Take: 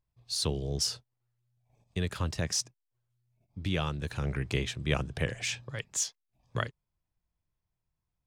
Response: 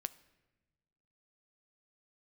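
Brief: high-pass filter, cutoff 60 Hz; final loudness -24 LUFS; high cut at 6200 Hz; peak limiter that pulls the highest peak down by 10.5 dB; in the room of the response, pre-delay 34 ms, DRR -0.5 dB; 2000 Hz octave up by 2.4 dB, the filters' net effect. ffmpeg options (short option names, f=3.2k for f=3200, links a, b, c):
-filter_complex "[0:a]highpass=60,lowpass=6.2k,equalizer=f=2k:t=o:g=3,alimiter=limit=-22dB:level=0:latency=1,asplit=2[a][b];[1:a]atrim=start_sample=2205,adelay=34[c];[b][c]afir=irnorm=-1:irlink=0,volume=2.5dB[d];[a][d]amix=inputs=2:normalize=0,volume=7.5dB"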